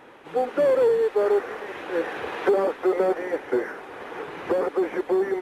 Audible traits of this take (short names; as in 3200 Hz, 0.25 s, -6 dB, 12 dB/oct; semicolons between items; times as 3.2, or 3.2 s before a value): noise floor -44 dBFS; spectral tilt -0.5 dB/oct